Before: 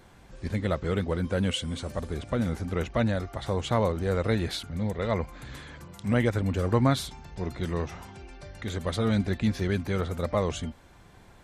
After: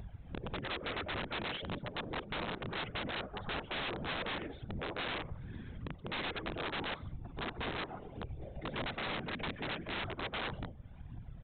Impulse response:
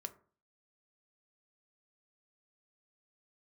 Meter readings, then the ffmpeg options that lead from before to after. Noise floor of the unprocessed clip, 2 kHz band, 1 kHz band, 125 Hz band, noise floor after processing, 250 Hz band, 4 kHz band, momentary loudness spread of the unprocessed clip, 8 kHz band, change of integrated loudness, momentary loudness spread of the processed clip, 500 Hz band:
-53 dBFS, -2.0 dB, -6.0 dB, -16.0 dB, -52 dBFS, -15.0 dB, -3.0 dB, 13 LU, under -35 dB, -11.0 dB, 8 LU, -13.5 dB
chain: -filter_complex "[0:a]flanger=delay=1.1:depth=4.9:regen=-20:speed=0.18:shape=triangular,acrossover=split=210|450|2300[a][b][c][d];[a]acompressor=threshold=-40dB:ratio=4[e];[b]acompressor=threshold=-43dB:ratio=4[f];[c]acompressor=threshold=-33dB:ratio=4[g];[d]acompressor=threshold=-51dB:ratio=4[h];[e][f][g][h]amix=inputs=4:normalize=0,bandreject=f=50:t=h:w=6,bandreject=f=100:t=h:w=6,bandreject=f=150:t=h:w=6,bandreject=f=200:t=h:w=6,bandreject=f=250:t=h:w=6,bandreject=f=300:t=h:w=6,bandreject=f=350:t=h:w=6,afwtdn=0.00631,aecho=1:1:5.4:0.48,aphaser=in_gain=1:out_gain=1:delay=4.3:decay=0.65:speed=1.7:type=triangular,aecho=1:1:93|186:0.0891|0.0294,afftfilt=real='hypot(re,im)*cos(2*PI*random(0))':imag='hypot(re,im)*sin(2*PI*random(1))':win_size=512:overlap=0.75,acompressor=mode=upward:threshold=-41dB:ratio=2.5,aresample=8000,aeval=exprs='(mod(70.8*val(0)+1,2)-1)/70.8':c=same,aresample=44100,volume=4.5dB"

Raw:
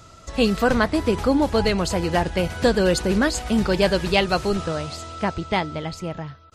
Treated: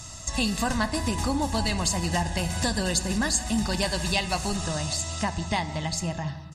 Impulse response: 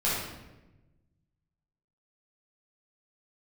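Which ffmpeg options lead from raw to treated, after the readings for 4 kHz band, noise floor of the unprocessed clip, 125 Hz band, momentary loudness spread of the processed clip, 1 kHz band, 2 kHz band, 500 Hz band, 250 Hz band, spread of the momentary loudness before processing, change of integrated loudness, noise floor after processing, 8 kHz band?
-1.0 dB, -47 dBFS, -2.0 dB, 4 LU, -4.5 dB, -4.5 dB, -11.5 dB, -6.0 dB, 10 LU, -5.0 dB, -41 dBFS, +6.5 dB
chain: -filter_complex "[0:a]equalizer=f=7.7k:t=o:w=1.4:g=14.5,aecho=1:1:1.1:0.71,acompressor=threshold=-28dB:ratio=2.5,asplit=2[a][b];[b]adelay=170,highpass=300,lowpass=3.4k,asoftclip=type=hard:threshold=-22dB,volume=-18dB[c];[a][c]amix=inputs=2:normalize=0,asplit=2[d][e];[1:a]atrim=start_sample=2205[f];[e][f]afir=irnorm=-1:irlink=0,volume=-21dB[g];[d][g]amix=inputs=2:normalize=0"

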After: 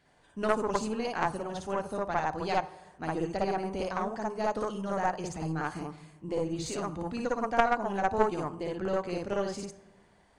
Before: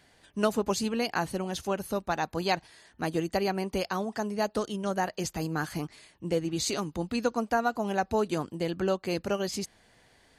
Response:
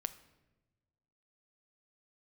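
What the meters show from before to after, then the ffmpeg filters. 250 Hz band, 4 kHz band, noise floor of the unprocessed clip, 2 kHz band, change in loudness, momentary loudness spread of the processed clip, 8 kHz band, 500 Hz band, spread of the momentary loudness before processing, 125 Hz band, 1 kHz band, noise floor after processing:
-3.5 dB, -8.0 dB, -63 dBFS, -1.5 dB, -1.5 dB, 8 LU, -7.5 dB, -1.0 dB, 5 LU, -2.5 dB, +1.5 dB, -63 dBFS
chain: -filter_complex "[0:a]highshelf=f=3.2k:g=-7.5,aresample=22050,aresample=44100,asplit=2[a][b];[b]equalizer=f=250:t=o:w=1:g=-4,equalizer=f=1k:t=o:w=1:g=7,equalizer=f=2k:t=o:w=1:g=-3,equalizer=f=4k:t=o:w=1:g=-9,equalizer=f=8k:t=o:w=1:g=4[c];[1:a]atrim=start_sample=2205,adelay=56[d];[c][d]afir=irnorm=-1:irlink=0,volume=3dB[e];[a][e]amix=inputs=2:normalize=0,aeval=exprs='0.398*(cos(1*acos(clip(val(0)/0.398,-1,1)))-cos(1*PI/2))+0.0891*(cos(2*acos(clip(val(0)/0.398,-1,1)))-cos(2*PI/2))+0.1*(cos(3*acos(clip(val(0)/0.398,-1,1)))-cos(3*PI/2))+0.0224*(cos(5*acos(clip(val(0)/0.398,-1,1)))-cos(5*PI/2))':c=same"

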